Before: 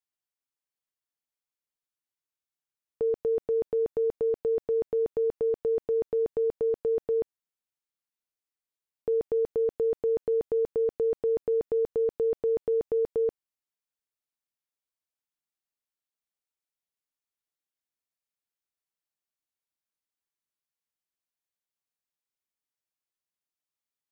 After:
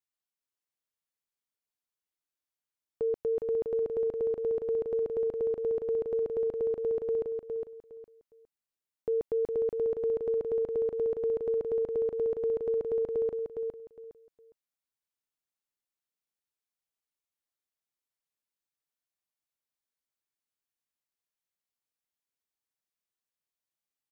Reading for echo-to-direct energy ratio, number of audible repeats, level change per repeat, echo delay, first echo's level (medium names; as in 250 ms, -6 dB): -5.0 dB, 3, -13.0 dB, 410 ms, -5.0 dB